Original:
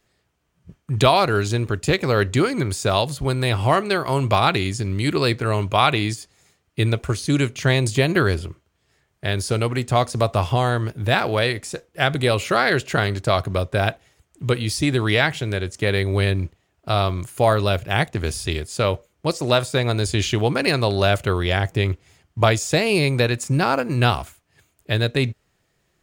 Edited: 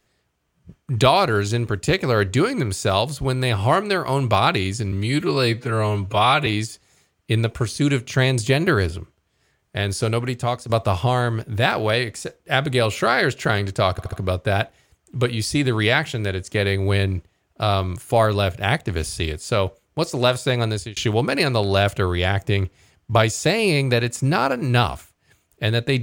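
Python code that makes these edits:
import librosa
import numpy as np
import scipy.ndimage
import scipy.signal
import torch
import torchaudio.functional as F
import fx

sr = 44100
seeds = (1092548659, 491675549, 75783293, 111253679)

y = fx.edit(x, sr, fx.stretch_span(start_s=4.92, length_s=1.03, factor=1.5),
    fx.fade_out_to(start_s=9.66, length_s=0.52, floor_db=-9.0),
    fx.stutter(start_s=13.4, slice_s=0.07, count=4),
    fx.fade_out_span(start_s=19.94, length_s=0.3), tone=tone)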